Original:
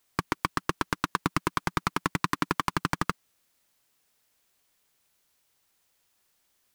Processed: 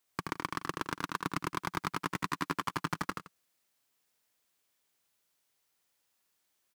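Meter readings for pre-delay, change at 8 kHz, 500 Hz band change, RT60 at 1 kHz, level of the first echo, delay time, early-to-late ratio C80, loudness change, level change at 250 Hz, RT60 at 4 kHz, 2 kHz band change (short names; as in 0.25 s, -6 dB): none, -6.0 dB, -6.5 dB, none, -4.5 dB, 77 ms, none, -6.5 dB, -6.5 dB, none, -6.0 dB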